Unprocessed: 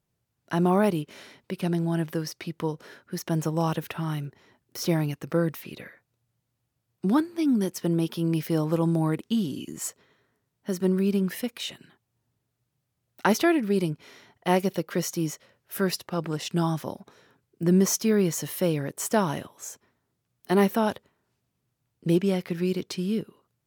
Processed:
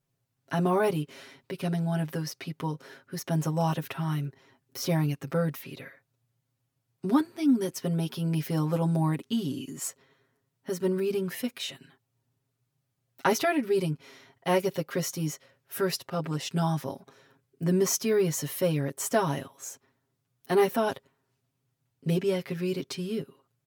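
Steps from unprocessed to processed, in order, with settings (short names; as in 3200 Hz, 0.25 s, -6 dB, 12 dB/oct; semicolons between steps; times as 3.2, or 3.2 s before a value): comb 7.4 ms, depth 94%; gain -4 dB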